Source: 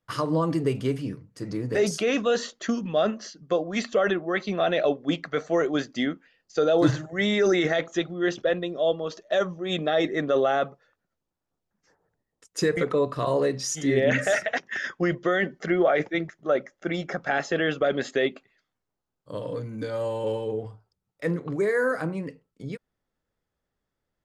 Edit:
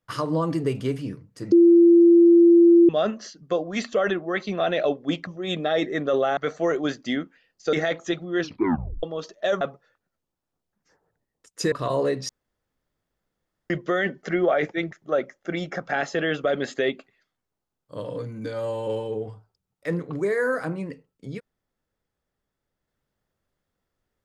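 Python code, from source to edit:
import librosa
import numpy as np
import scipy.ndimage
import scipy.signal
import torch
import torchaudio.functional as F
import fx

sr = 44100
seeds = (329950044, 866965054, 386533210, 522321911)

y = fx.edit(x, sr, fx.bleep(start_s=1.52, length_s=1.37, hz=341.0, db=-10.0),
    fx.cut(start_s=6.63, length_s=0.98),
    fx.tape_stop(start_s=8.27, length_s=0.64),
    fx.move(start_s=9.49, length_s=1.1, to_s=5.27),
    fx.cut(start_s=12.7, length_s=0.39),
    fx.room_tone_fill(start_s=13.66, length_s=1.41), tone=tone)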